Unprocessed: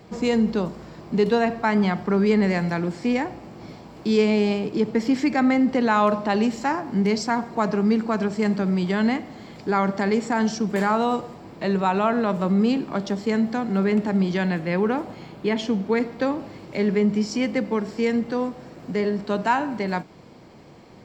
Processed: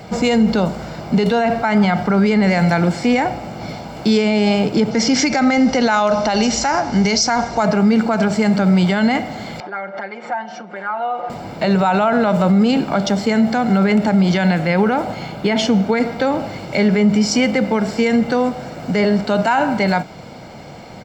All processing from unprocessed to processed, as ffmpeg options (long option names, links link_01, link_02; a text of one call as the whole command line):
ffmpeg -i in.wav -filter_complex "[0:a]asettb=1/sr,asplit=3[link_01][link_02][link_03];[link_01]atrim=end=4.914[link_04];[link_02]atrim=start=4.91:end=7.63,asetpts=PTS-STARTPTS,afade=type=in:duration=0.004:curve=qsin,afade=type=out:start_time=2.716:duration=0.004:curve=qsin,lowpass=frequency=6000:width_type=q:width=4.2,asubboost=boost=10.5:cutoff=59[link_05];[link_03]atrim=start=7.626[link_06];[link_04][link_05]acrossfade=duration=0.004:curve1=hsin:curve2=qsin[link_07];[link_07][link_06]acrossfade=duration=0.004:curve1=qsin:curve2=hsin,asettb=1/sr,asplit=3[link_08][link_09][link_10];[link_08]atrim=end=9.604[link_11];[link_09]atrim=start=9.6:end=11.3,asetpts=PTS-STARTPTS,afade=type=in:duration=0.004:curve=qsin,afade=type=out:start_time=1.696:duration=0.004:curve=qsin,aecho=1:1:5.6:0.92,atrim=end_sample=74970,acompressor=threshold=-30dB:ratio=10:attack=3.2:release=140:knee=1:detection=peak,highpass=500,lowpass=2000[link_12];[link_10]atrim=start=11.296[link_13];[link_11][link_12]acrossfade=duration=0.004:curve1=hsin:curve2=qsin[link_14];[link_14][link_13]acrossfade=duration=0.004:curve1=qsin:curve2=hsin,lowshelf=frequency=160:gain=-5,aecho=1:1:1.4:0.49,alimiter=level_in=18.5dB:limit=-1dB:release=50:level=0:latency=1,volume=-6dB" out.wav